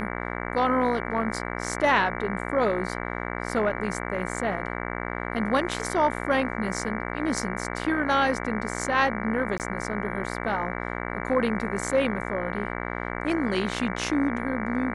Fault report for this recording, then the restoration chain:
buzz 60 Hz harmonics 38 -32 dBFS
9.58–9.60 s: dropout 18 ms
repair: de-hum 60 Hz, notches 38; interpolate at 9.58 s, 18 ms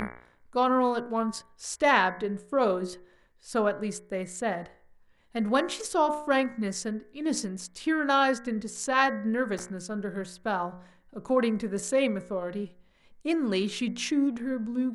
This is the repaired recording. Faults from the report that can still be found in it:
nothing left

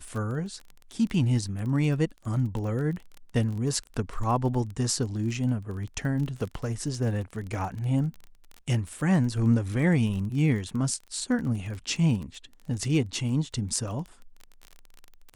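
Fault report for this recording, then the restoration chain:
crackle 23 per s -33 dBFS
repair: de-click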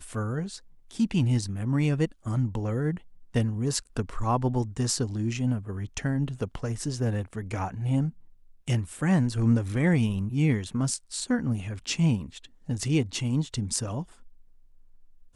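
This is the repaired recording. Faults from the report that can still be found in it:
nothing left

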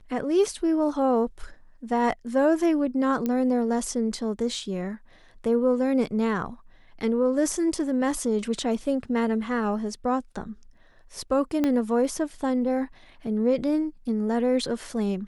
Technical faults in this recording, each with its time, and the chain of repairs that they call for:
3.26 s: pop -15 dBFS
11.64 s: pop -12 dBFS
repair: de-click

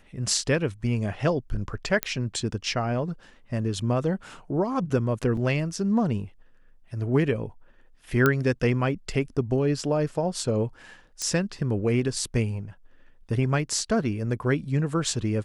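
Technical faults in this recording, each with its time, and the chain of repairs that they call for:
2.03 s: pop -6 dBFS
5.37 s: dropout 2.5 ms
8.26 s: pop -7 dBFS
11.22 s: pop -15 dBFS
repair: de-click; interpolate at 5.37 s, 2.5 ms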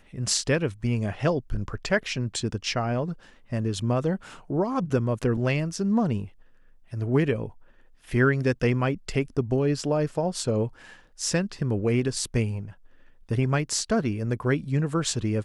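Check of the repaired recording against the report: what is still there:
nothing left

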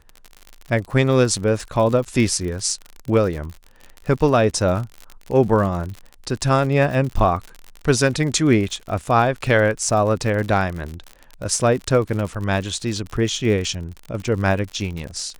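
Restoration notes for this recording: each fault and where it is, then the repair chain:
crackle 59 per s -27 dBFS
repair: de-click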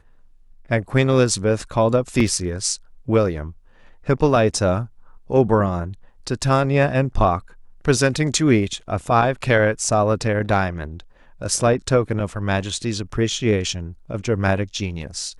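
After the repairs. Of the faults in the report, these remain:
nothing left

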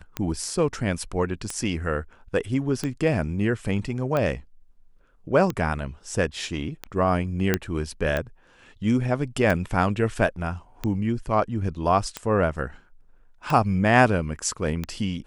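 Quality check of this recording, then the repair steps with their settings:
tick 45 rpm -13 dBFS
7.54 s: pop -6 dBFS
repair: de-click

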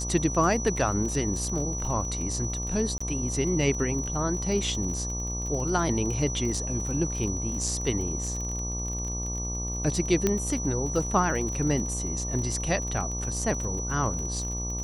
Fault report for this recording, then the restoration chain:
buzz 60 Hz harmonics 20 -33 dBFS
crackle 34 per s -33 dBFS
whine 5.9 kHz -33 dBFS
2.98–3.00 s: dropout 25 ms
10.27 s: pop -10 dBFS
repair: de-click; band-stop 5.9 kHz, Q 30; de-hum 60 Hz, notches 20; interpolate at 2.98 s, 25 ms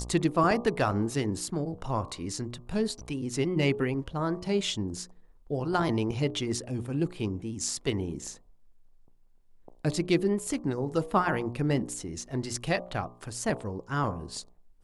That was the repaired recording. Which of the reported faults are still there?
nothing left

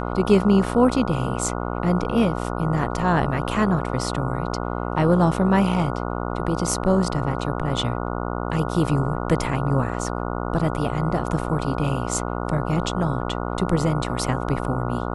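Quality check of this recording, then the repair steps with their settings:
buzz 60 Hz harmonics 24 -27 dBFS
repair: de-hum 60 Hz, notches 24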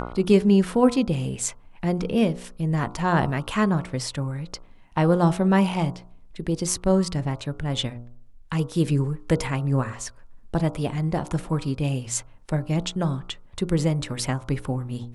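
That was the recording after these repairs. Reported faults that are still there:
nothing left

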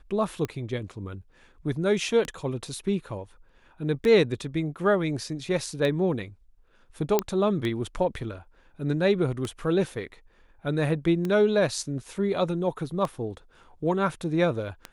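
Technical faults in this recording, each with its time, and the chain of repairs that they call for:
tick 33 1/3 rpm -17 dBFS
7.19 s: pop -7 dBFS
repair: de-click

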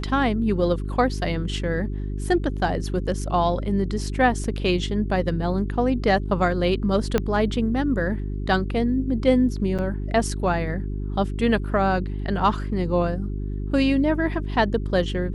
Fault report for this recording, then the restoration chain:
hum 50 Hz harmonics 8 -28 dBFS
4.44 s: dropout 2.7 ms
7.18 s: pop -8 dBFS
9.78–9.79 s: dropout 7.1 ms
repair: de-click; de-hum 50 Hz, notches 8; interpolate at 4.44 s, 2.7 ms; interpolate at 9.78 s, 7.1 ms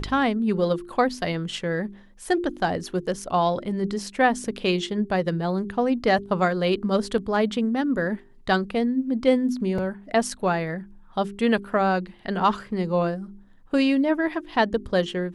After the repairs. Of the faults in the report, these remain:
7.18 s: pop

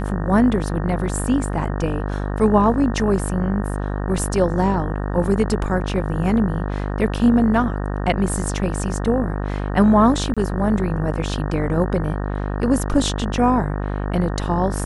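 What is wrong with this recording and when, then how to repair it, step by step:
buzz 50 Hz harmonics 37 -24 dBFS
10.34–10.37 s: dropout 26 ms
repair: de-hum 50 Hz, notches 37; interpolate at 10.34 s, 26 ms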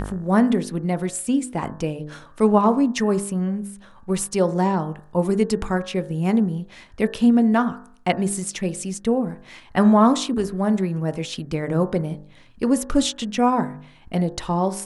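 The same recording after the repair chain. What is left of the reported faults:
nothing left

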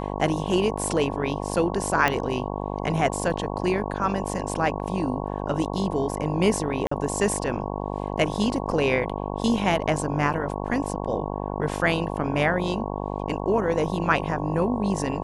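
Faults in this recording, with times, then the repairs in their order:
buzz 50 Hz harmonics 22 -30 dBFS
2.08 s: pop -8 dBFS
6.87–6.91 s: dropout 44 ms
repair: de-click; de-hum 50 Hz, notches 22; interpolate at 6.87 s, 44 ms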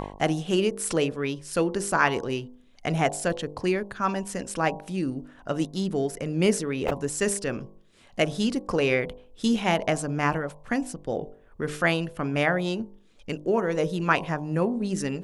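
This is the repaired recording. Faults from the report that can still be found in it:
nothing left

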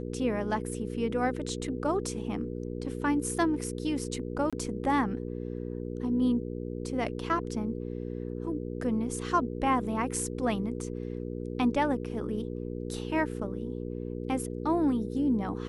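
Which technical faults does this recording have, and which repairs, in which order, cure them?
hum 60 Hz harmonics 8 -36 dBFS
4.50–4.53 s: dropout 26 ms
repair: de-hum 60 Hz, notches 8; interpolate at 4.50 s, 26 ms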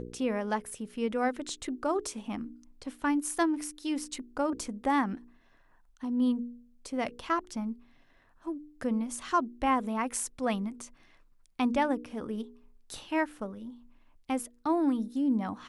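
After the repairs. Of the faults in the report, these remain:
nothing left

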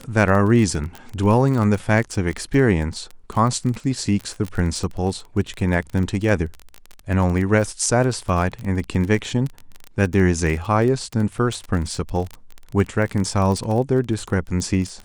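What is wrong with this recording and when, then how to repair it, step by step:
crackle 23 per s -24 dBFS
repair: de-click

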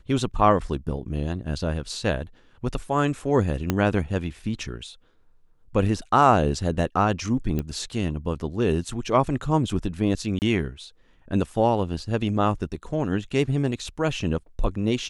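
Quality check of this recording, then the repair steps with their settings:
3.70 s: pop -8 dBFS
7.59 s: pop -15 dBFS
10.39–10.42 s: dropout 29 ms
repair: de-click; interpolate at 10.39 s, 29 ms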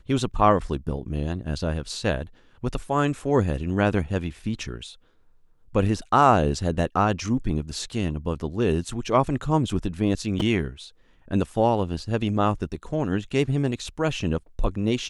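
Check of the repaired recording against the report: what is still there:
3.70 s: pop

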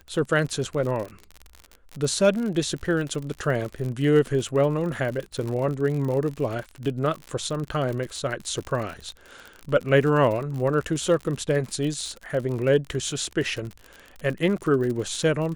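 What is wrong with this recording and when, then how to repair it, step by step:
crackle 55 per s -30 dBFS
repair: de-click

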